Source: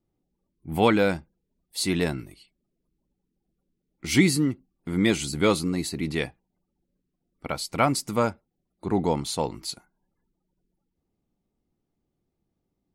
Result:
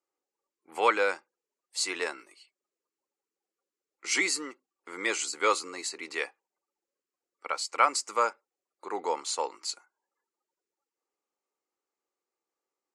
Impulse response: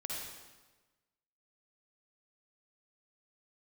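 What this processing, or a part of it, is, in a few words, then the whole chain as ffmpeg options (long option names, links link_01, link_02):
phone speaker on a table: -af "highpass=frequency=490:width=0.5412,highpass=frequency=490:width=1.3066,equalizer=frequency=670:width_type=q:width=4:gain=-10,equalizer=frequency=1200:width_type=q:width=4:gain=5,equalizer=frequency=3500:width_type=q:width=4:gain=-8,equalizer=frequency=7200:width_type=q:width=4:gain=5,lowpass=frequency=8400:width=0.5412,lowpass=frequency=8400:width=1.3066"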